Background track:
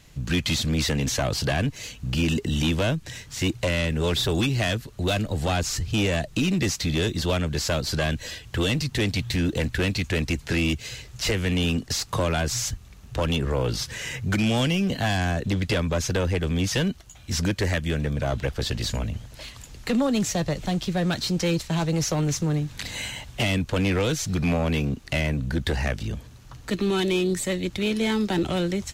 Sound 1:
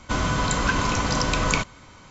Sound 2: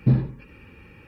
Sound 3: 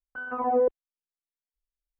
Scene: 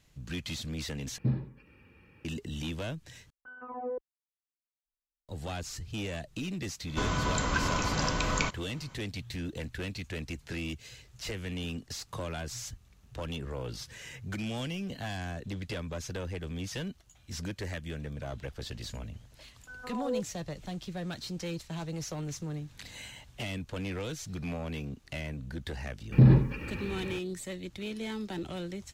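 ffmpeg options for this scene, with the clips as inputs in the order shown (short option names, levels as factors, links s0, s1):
-filter_complex "[2:a]asplit=2[s0][s1];[3:a]asplit=2[s2][s3];[0:a]volume=0.224[s4];[s0]highpass=49[s5];[s2]equalizer=f=660:w=2.3:g=-3.5[s6];[s3]asplit=2[s7][s8];[s8]adelay=18,volume=0.266[s9];[s7][s9]amix=inputs=2:normalize=0[s10];[s1]alimiter=level_in=8.41:limit=0.891:release=50:level=0:latency=1[s11];[s4]asplit=3[s12][s13][s14];[s12]atrim=end=1.184[s15];[s5]atrim=end=1.07,asetpts=PTS-STARTPTS,volume=0.299[s16];[s13]atrim=start=2.246:end=3.304[s17];[s6]atrim=end=1.99,asetpts=PTS-STARTPTS,volume=0.251[s18];[s14]atrim=start=5.286[s19];[1:a]atrim=end=2.1,asetpts=PTS-STARTPTS,volume=0.447,afade=t=in:d=0.004:c=hsin,afade=t=out:st=2.096:d=0.004:c=hsin,adelay=6870[s20];[s10]atrim=end=1.99,asetpts=PTS-STARTPTS,volume=0.237,afade=t=in:d=0.004:c=hsin,afade=t=out:st=1.986:d=0.004:c=hsin,adelay=19520[s21];[s11]atrim=end=1.07,asetpts=PTS-STARTPTS,volume=0.335,afade=t=in:d=0.004:c=hsin,afade=t=out:st=1.066:d=0.004:c=hsin,adelay=26120[s22];[s15][s16]acrossfade=d=0.004:c1=hsin:c2=hsin[s23];[s23][s17]acrossfade=d=0.004:c1=hsin:c2=hsin[s24];[s24][s18]acrossfade=d=0.004:c1=hsin:c2=hsin[s25];[s25][s19]acrossfade=d=0.004:c1=hsin:c2=hsin[s26];[s26][s20][s21][s22]amix=inputs=4:normalize=0"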